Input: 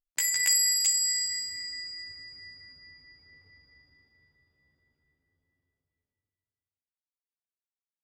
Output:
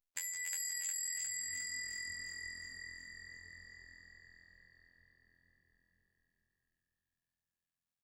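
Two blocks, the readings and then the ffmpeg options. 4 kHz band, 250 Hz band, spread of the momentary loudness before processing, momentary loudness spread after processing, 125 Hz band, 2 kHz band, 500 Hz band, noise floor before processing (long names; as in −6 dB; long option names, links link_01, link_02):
−17.0 dB, −2.5 dB, 20 LU, 19 LU, −1.5 dB, −6.0 dB, can't be measured, below −85 dBFS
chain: -filter_complex "[0:a]afftfilt=real='hypot(re,im)*cos(PI*b)':imag='0':win_size=2048:overlap=0.75,acompressor=threshold=-40dB:ratio=8,asplit=9[link_01][link_02][link_03][link_04][link_05][link_06][link_07][link_08][link_09];[link_02]adelay=358,afreqshift=-42,volume=-3.5dB[link_10];[link_03]adelay=716,afreqshift=-84,volume=-8.2dB[link_11];[link_04]adelay=1074,afreqshift=-126,volume=-13dB[link_12];[link_05]adelay=1432,afreqshift=-168,volume=-17.7dB[link_13];[link_06]adelay=1790,afreqshift=-210,volume=-22.4dB[link_14];[link_07]adelay=2148,afreqshift=-252,volume=-27.2dB[link_15];[link_08]adelay=2506,afreqshift=-294,volume=-31.9dB[link_16];[link_09]adelay=2864,afreqshift=-336,volume=-36.6dB[link_17];[link_01][link_10][link_11][link_12][link_13][link_14][link_15][link_16][link_17]amix=inputs=9:normalize=0,volume=1dB"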